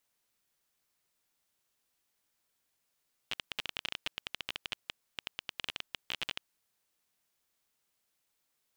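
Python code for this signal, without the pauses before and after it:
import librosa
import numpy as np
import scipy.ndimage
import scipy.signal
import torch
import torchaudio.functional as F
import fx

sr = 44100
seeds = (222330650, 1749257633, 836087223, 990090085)

y = fx.geiger_clicks(sr, seeds[0], length_s=3.13, per_s=17.0, level_db=-17.5)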